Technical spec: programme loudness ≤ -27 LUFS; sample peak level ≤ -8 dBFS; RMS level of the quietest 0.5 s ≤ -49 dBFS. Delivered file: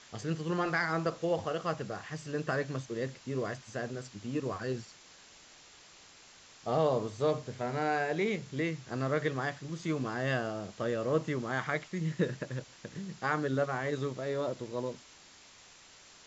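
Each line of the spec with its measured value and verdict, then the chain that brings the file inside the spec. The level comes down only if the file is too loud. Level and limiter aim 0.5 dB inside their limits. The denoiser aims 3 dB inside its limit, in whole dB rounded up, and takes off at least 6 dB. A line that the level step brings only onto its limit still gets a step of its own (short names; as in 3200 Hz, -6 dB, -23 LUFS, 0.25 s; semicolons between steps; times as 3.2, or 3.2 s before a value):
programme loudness -34.0 LUFS: OK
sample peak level -16.0 dBFS: OK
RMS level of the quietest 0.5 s -56 dBFS: OK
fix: none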